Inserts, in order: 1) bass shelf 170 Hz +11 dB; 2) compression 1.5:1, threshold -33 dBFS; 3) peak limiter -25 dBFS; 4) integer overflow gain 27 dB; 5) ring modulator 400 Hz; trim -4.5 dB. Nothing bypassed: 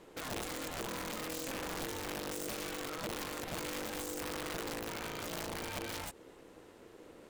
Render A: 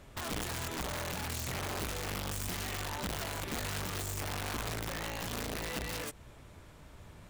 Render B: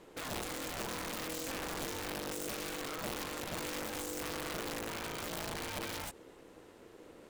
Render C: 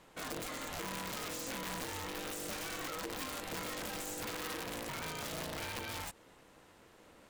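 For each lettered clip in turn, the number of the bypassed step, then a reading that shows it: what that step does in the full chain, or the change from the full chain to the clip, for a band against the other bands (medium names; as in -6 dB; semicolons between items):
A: 5, momentary loudness spread change +1 LU; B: 2, mean gain reduction 4.0 dB; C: 1, 500 Hz band -2.5 dB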